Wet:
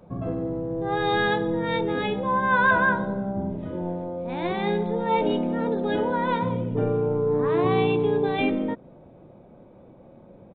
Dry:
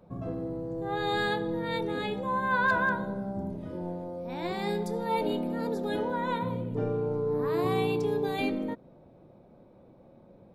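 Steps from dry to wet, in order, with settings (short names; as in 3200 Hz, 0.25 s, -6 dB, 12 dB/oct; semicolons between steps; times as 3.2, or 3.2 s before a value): downsampling 8000 Hz; gain +6 dB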